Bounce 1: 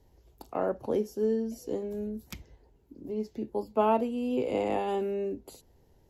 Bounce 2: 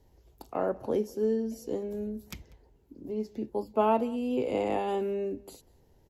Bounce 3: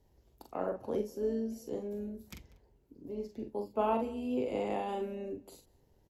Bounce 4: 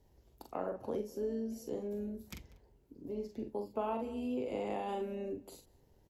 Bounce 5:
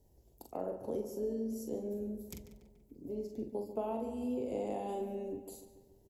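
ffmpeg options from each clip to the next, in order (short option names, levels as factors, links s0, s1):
-filter_complex "[0:a]asplit=2[s0][s1];[s1]adelay=192.4,volume=0.0708,highshelf=f=4000:g=-4.33[s2];[s0][s2]amix=inputs=2:normalize=0"
-filter_complex "[0:a]tremolo=f=170:d=0.333,asplit=2[s0][s1];[s1]adelay=44,volume=0.501[s2];[s0][s2]amix=inputs=2:normalize=0,volume=0.596"
-af "acompressor=threshold=0.0158:ratio=2.5,volume=1.12"
-filter_complex "[0:a]firequalizer=gain_entry='entry(670,0);entry(1200,-11);entry(7800,5)':delay=0.05:min_phase=1,asplit=2[s0][s1];[s1]adelay=143,lowpass=f=3900:p=1,volume=0.282,asplit=2[s2][s3];[s3]adelay=143,lowpass=f=3900:p=1,volume=0.55,asplit=2[s4][s5];[s5]adelay=143,lowpass=f=3900:p=1,volume=0.55,asplit=2[s6][s7];[s7]adelay=143,lowpass=f=3900:p=1,volume=0.55,asplit=2[s8][s9];[s9]adelay=143,lowpass=f=3900:p=1,volume=0.55,asplit=2[s10][s11];[s11]adelay=143,lowpass=f=3900:p=1,volume=0.55[s12];[s0][s2][s4][s6][s8][s10][s12]amix=inputs=7:normalize=0"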